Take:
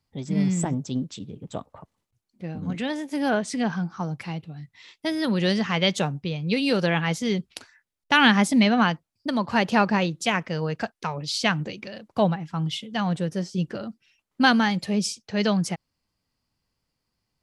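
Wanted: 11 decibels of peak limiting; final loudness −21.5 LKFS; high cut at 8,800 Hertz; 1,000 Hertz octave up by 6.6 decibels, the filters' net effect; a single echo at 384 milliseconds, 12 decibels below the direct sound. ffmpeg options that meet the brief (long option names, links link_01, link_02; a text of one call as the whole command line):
ffmpeg -i in.wav -af "lowpass=8800,equalizer=frequency=1000:width_type=o:gain=8.5,alimiter=limit=-11.5dB:level=0:latency=1,aecho=1:1:384:0.251,volume=3.5dB" out.wav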